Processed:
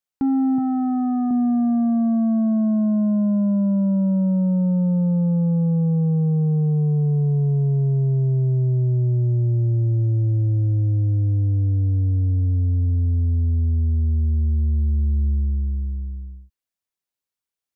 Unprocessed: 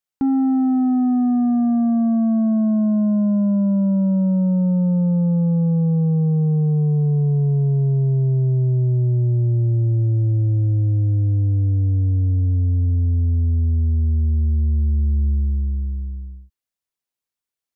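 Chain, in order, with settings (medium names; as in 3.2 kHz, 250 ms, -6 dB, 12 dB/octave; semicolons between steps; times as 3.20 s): 0.58–1.31 s: graphic EQ 125/250/500/1000 Hz +11/-4/-6/+8 dB; trim -1.5 dB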